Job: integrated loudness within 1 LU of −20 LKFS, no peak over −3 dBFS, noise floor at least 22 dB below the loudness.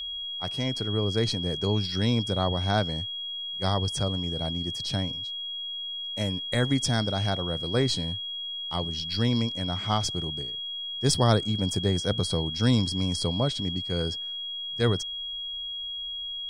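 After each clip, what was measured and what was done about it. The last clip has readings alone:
crackle rate 26 per second; interfering tone 3,300 Hz; level of the tone −32 dBFS; integrated loudness −27.5 LKFS; sample peak −7.0 dBFS; target loudness −20.0 LKFS
→ click removal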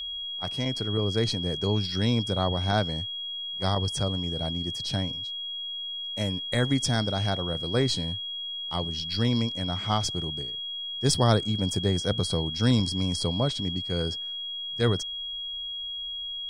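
crackle rate 0.061 per second; interfering tone 3,300 Hz; level of the tone −32 dBFS
→ notch filter 3,300 Hz, Q 30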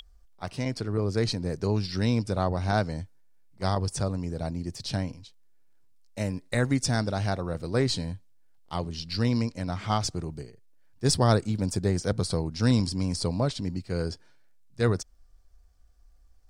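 interfering tone none found; integrated loudness −28.5 LKFS; sample peak −7.0 dBFS; target loudness −20.0 LKFS
→ level +8.5 dB
brickwall limiter −3 dBFS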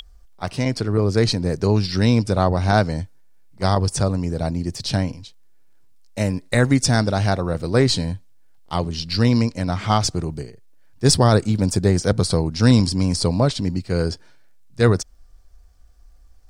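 integrated loudness −20.0 LKFS; sample peak −3.0 dBFS; background noise floor −48 dBFS

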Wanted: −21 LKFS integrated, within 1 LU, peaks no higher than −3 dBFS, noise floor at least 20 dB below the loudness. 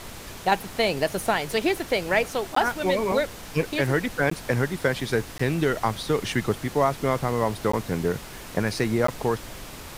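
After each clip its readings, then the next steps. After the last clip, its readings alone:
number of dropouts 5; longest dropout 14 ms; background noise floor −40 dBFS; target noise floor −46 dBFS; integrated loudness −25.5 LKFS; sample peak −8.5 dBFS; target loudness −21.0 LKFS
→ repair the gap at 0:02.55/0:04.30/0:05.38/0:07.72/0:09.07, 14 ms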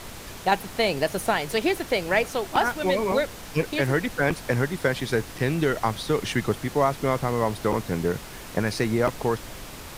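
number of dropouts 0; background noise floor −40 dBFS; target noise floor −46 dBFS
→ noise reduction from a noise print 6 dB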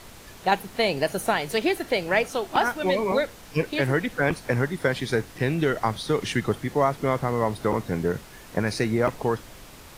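background noise floor −46 dBFS; integrated loudness −25.5 LKFS; sample peak −8.5 dBFS; target loudness −21.0 LKFS
→ level +4.5 dB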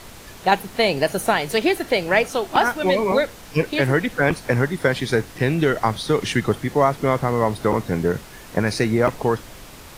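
integrated loudness −21.0 LKFS; sample peak −4.0 dBFS; background noise floor −41 dBFS

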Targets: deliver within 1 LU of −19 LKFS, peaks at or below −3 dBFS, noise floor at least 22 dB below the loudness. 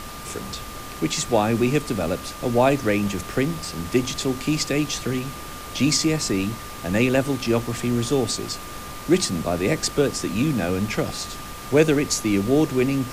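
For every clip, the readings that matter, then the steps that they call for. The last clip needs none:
interfering tone 1,200 Hz; level of the tone −39 dBFS; background noise floor −36 dBFS; target noise floor −45 dBFS; integrated loudness −23.0 LKFS; sample peak −4.0 dBFS; target loudness −19.0 LKFS
→ notch filter 1,200 Hz, Q 30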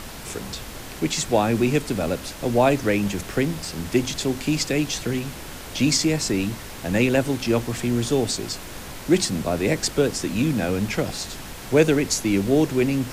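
interfering tone none found; background noise floor −37 dBFS; target noise floor −45 dBFS
→ noise reduction from a noise print 8 dB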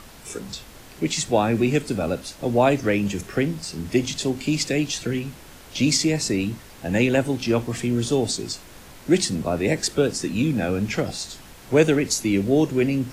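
background noise floor −45 dBFS; integrated loudness −23.0 LKFS; sample peak −4.0 dBFS; target loudness −19.0 LKFS
→ level +4 dB
brickwall limiter −3 dBFS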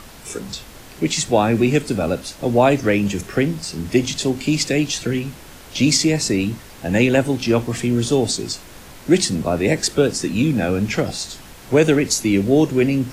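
integrated loudness −19.0 LKFS; sample peak −3.0 dBFS; background noise floor −41 dBFS

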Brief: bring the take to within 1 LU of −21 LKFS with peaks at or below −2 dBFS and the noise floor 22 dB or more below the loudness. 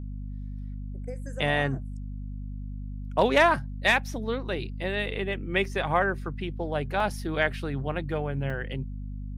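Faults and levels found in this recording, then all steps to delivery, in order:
number of dropouts 2; longest dropout 3.6 ms; mains hum 50 Hz; hum harmonics up to 250 Hz; level of the hum −33 dBFS; integrated loudness −27.5 LKFS; sample peak −9.5 dBFS; target loudness −21.0 LKFS
→ repair the gap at 0:07.00/0:08.50, 3.6 ms
mains-hum notches 50/100/150/200/250 Hz
level +6.5 dB

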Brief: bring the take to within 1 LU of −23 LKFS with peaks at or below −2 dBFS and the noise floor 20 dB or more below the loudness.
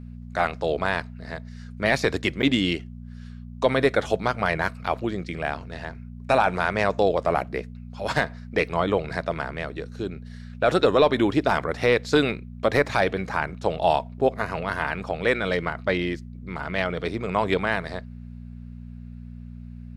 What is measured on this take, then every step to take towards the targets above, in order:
number of dropouts 1; longest dropout 9.2 ms; mains hum 60 Hz; hum harmonics up to 240 Hz; level of the hum −37 dBFS; integrated loudness −24.5 LKFS; sample peak −7.5 dBFS; target loudness −23.0 LKFS
→ repair the gap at 0:02.42, 9.2 ms
hum removal 60 Hz, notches 4
level +1.5 dB

